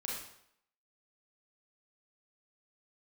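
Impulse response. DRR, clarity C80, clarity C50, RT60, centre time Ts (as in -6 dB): -4.0 dB, 4.5 dB, 0.5 dB, 0.70 s, 58 ms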